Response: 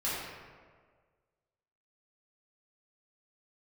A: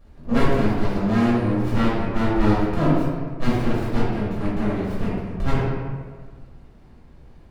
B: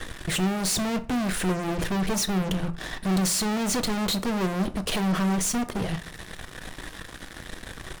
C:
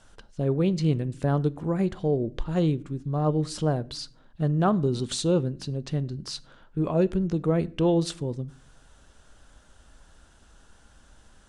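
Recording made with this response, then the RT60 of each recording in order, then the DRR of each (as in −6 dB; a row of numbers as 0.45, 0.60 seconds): A; 1.7 s, 0.50 s, non-exponential decay; −10.5, 9.0, 17.5 decibels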